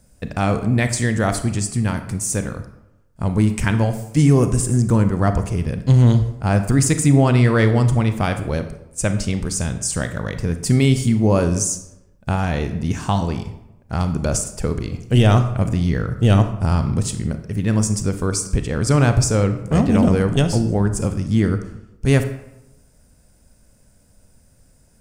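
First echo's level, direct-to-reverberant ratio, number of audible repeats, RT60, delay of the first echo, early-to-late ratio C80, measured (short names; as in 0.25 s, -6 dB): none, 8.5 dB, none, 0.90 s, none, 13.0 dB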